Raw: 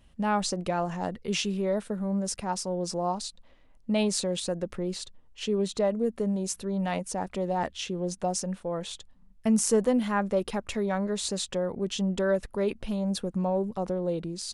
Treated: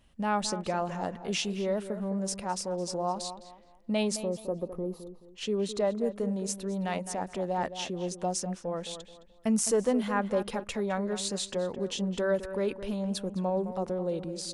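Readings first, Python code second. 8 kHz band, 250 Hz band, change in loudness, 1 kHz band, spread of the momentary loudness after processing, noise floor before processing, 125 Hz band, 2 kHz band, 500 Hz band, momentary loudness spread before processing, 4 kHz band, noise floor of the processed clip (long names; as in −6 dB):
−2.0 dB, −3.0 dB, −2.0 dB, −1.5 dB, 7 LU, −57 dBFS, −3.5 dB, −1.5 dB, −1.5 dB, 7 LU, −2.0 dB, −56 dBFS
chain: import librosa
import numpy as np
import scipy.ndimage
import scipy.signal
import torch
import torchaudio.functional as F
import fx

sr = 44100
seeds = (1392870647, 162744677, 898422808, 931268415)

y = fx.spec_box(x, sr, start_s=4.16, length_s=1.07, low_hz=1300.0, high_hz=9800.0, gain_db=-20)
y = fx.low_shelf(y, sr, hz=180.0, db=-4.5)
y = fx.echo_tape(y, sr, ms=213, feedback_pct=35, wet_db=-10.0, lp_hz=2200.0, drive_db=16.0, wow_cents=27)
y = F.gain(torch.from_numpy(y), -1.5).numpy()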